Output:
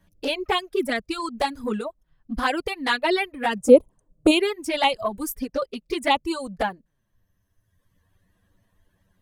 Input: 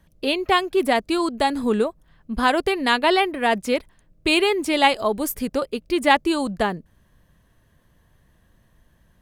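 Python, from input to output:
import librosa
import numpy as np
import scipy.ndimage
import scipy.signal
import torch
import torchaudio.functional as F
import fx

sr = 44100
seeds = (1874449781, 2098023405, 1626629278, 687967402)

y = fx.dereverb_blind(x, sr, rt60_s=1.6)
y = fx.graphic_eq(y, sr, hz=(125, 250, 500, 1000, 2000, 4000, 8000), db=(7, 6, 10, 8, -9, -10, 11), at=(3.59, 4.3), fade=0.02)
y = fx.env_flanger(y, sr, rest_ms=10.7, full_db=-13.0)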